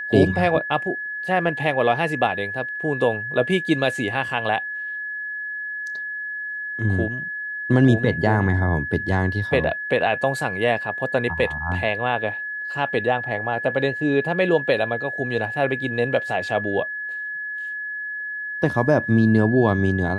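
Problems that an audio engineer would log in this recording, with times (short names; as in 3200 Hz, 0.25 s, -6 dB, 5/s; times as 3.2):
tone 1700 Hz -27 dBFS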